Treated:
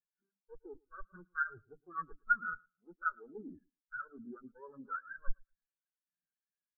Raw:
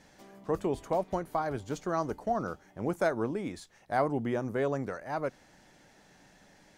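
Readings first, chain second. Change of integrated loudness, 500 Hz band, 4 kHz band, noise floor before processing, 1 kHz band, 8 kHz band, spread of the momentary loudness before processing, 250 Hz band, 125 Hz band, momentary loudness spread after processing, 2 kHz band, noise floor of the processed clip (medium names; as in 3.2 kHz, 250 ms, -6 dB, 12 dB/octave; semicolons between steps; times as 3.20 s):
-7.0 dB, -23.5 dB, under -30 dB, -61 dBFS, -6.5 dB, under -25 dB, 7 LU, -18.5 dB, -22.0 dB, 20 LU, +3.0 dB, under -85 dBFS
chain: comb filter that takes the minimum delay 0.65 ms; hum notches 50/100/150/200/250/300 Hz; reverse; compression 12:1, threshold -45 dBFS, peak gain reduction 18.5 dB; reverse; resonant high shelf 2.3 kHz -13 dB, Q 3; on a send: feedback delay 111 ms, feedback 53%, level -7.5 dB; on the sum: spectral contrast expander 4:1; trim +11.5 dB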